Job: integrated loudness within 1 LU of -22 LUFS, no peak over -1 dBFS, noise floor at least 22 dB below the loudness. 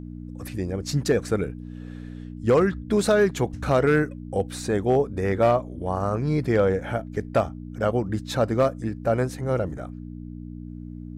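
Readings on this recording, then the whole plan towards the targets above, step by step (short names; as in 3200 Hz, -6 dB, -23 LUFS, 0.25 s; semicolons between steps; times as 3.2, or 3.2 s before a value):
clipped 0.4%; flat tops at -12.0 dBFS; hum 60 Hz; harmonics up to 300 Hz; hum level -35 dBFS; loudness -24.5 LUFS; peak -12.0 dBFS; loudness target -22.0 LUFS
-> clip repair -12 dBFS; de-hum 60 Hz, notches 5; gain +2.5 dB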